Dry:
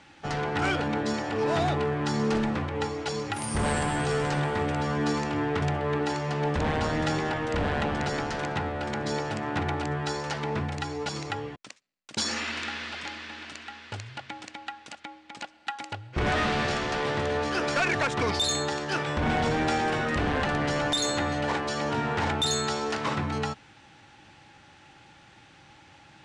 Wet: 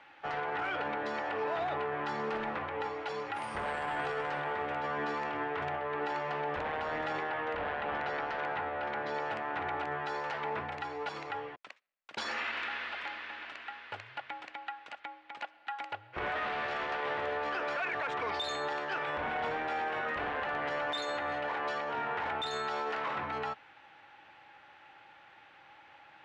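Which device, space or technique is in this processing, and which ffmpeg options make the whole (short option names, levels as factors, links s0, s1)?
DJ mixer with the lows and highs turned down: -filter_complex "[0:a]asettb=1/sr,asplit=3[s0][s1][s2];[s0]atrim=end=7.224[s3];[s1]atrim=start=7.22:end=9.14,asetpts=PTS-STARTPTS,afade=t=in:d=0.004:c=qsin,afade=t=out:st=1.916:d=0.004:c=qsin,lowpass=5400[s4];[s2]atrim=start=9.136[s5];[s3][s4]acrossfade=d=0.004:c1=hsin:c2=qsin[s6];[s6][s5]acrossfade=d=0.004:c1=qsin:c2=hsin,acrossover=split=460 3100:gain=0.126 1 0.0708[s7][s8][s9];[s7][s8][s9]amix=inputs=3:normalize=0,alimiter=level_in=1.33:limit=0.0631:level=0:latency=1:release=24,volume=0.75"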